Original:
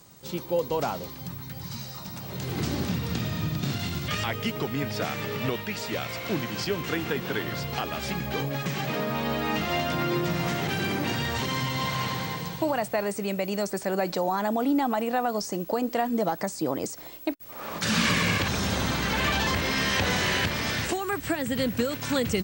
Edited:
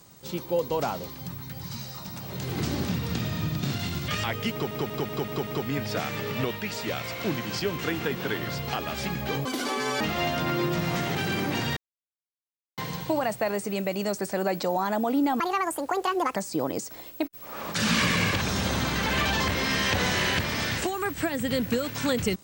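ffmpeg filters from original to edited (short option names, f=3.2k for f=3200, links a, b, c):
-filter_complex "[0:a]asplit=12[a][b][c][d][e][f][g][h][i][j][k][l];[a]atrim=end=4.712[m];[b]atrim=start=4.518:end=4.712[n];[c]atrim=start=4.518:end=4.712[o];[d]atrim=start=4.518:end=4.712[p];[e]atrim=start=4.518:end=4.712[q];[f]atrim=start=4.518:end=8.504[r];[g]atrim=start=8.5:end=9.53,asetpts=PTS-STARTPTS,asetrate=81585,aresample=44100[s];[h]atrim=start=9.526:end=11.29,asetpts=PTS-STARTPTS,afade=t=out:st=1.76:d=0.004:c=hsin[t];[i]atrim=start=11.29:end=12.3,asetpts=PTS-STARTPTS,volume=0[u];[j]atrim=start=12.3:end=14.924,asetpts=PTS-STARTPTS,afade=t=in:d=0.004:c=hsin[v];[k]atrim=start=14.92:end=16.42,asetpts=PTS-STARTPTS,asetrate=69237,aresample=44100[w];[l]atrim=start=16.416[x];[m][n]acrossfade=d=0.004:c1=hsin:c2=hsin[y];[y][o]acrossfade=d=0.004:c1=hsin:c2=hsin[z];[z][p]acrossfade=d=0.004:c1=hsin:c2=hsin[aa];[aa][q]acrossfade=d=0.004:c1=hsin:c2=hsin[ab];[ab][r]acrossfade=d=0.004:c1=hsin:c2=hsin[ac];[ac][s]acrossfade=d=0.004:c1=hsin:c2=hsin[ad];[t][u][v]concat=n=3:v=0:a=1[ae];[ad][ae]acrossfade=d=0.004:c1=hsin:c2=hsin[af];[af][w]acrossfade=d=0.004:c1=hsin:c2=hsin[ag];[ag][x]acrossfade=d=0.004:c1=hsin:c2=hsin"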